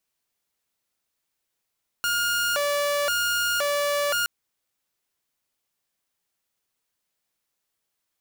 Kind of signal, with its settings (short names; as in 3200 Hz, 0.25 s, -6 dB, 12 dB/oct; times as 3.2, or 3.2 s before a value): siren hi-lo 578–1420 Hz 0.96/s saw -19.5 dBFS 2.22 s